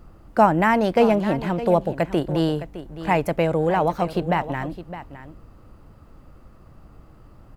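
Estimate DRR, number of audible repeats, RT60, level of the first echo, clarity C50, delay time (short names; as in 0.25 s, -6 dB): none, 1, none, -13.5 dB, none, 0.612 s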